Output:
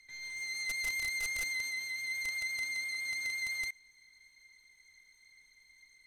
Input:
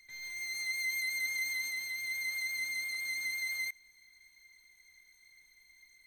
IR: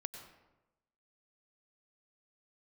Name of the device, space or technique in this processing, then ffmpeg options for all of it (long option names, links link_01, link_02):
overflowing digital effects unit: -af "aeval=exprs='(mod(25.1*val(0)+1,2)-1)/25.1':channel_layout=same,lowpass=10000"